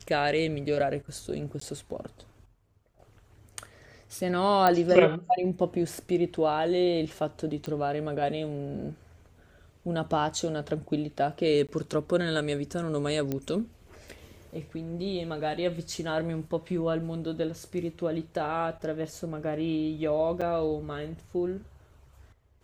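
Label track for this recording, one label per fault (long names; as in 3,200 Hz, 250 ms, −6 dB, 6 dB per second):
1.600000	1.610000	drop-out 14 ms
4.670000	4.670000	click −10 dBFS
7.660000	7.660000	click −22 dBFS
11.670000	11.690000	drop-out 17 ms
13.320000	13.320000	click −17 dBFS
20.410000	20.420000	drop-out 5.9 ms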